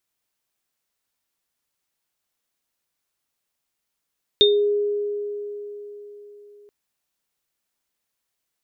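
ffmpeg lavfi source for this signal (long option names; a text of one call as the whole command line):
ffmpeg -f lavfi -i "aevalsrc='0.211*pow(10,-3*t/4.11)*sin(2*PI*412*t)+0.376*pow(10,-3*t/0.27)*sin(2*PI*3650*t)':duration=2.28:sample_rate=44100" out.wav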